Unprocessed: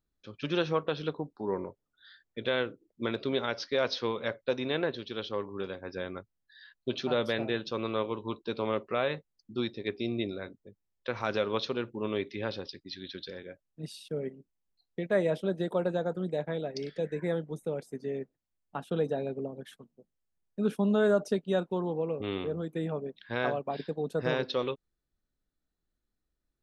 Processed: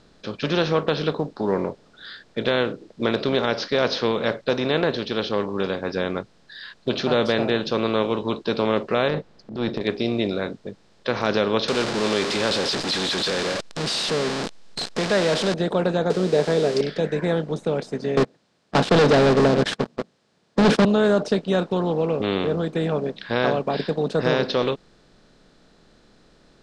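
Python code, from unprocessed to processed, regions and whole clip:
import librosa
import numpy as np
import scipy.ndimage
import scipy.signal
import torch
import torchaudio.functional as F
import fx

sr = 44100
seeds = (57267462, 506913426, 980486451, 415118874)

y = fx.chain(x, sr, fx.lowpass(hz=1100.0, slope=6),
    fx.transient(attack_db=-10, sustain_db=7), at=(9.08, 9.81))
y = fx.chain(y, sr, fx.zero_step(step_db=-32.0),
    fx.tilt_eq(slope=2.5), at=(11.68, 15.54))
y = fx.chain(y, sr, fx.crossing_spikes(level_db=-33.0),
    fx.peak_eq(hz=420.0, db=14.5, octaves=0.4), at=(16.1, 16.81))
y = fx.chain(y, sr, fx.highpass(hz=110.0, slope=24),
    fx.leveller(passes=5), at=(18.17, 20.85))
y = fx.bin_compress(y, sr, power=0.6)
y = scipy.signal.sosfilt(scipy.signal.butter(4, 7100.0, 'lowpass', fs=sr, output='sos'), y)
y = y * librosa.db_to_amplitude(3.5)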